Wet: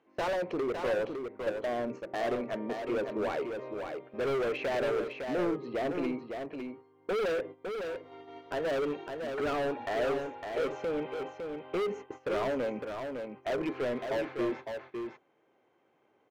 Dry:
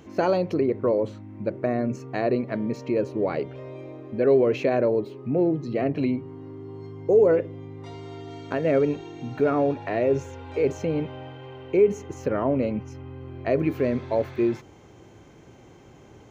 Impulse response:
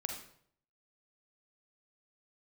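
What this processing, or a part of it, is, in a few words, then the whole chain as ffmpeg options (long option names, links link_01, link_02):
walkie-talkie: -af "highpass=480,lowpass=2600,asoftclip=type=hard:threshold=-29.5dB,agate=range=-16dB:threshold=-43dB:ratio=16:detection=peak,lowshelf=frequency=180:gain=6,aecho=1:1:557:0.501"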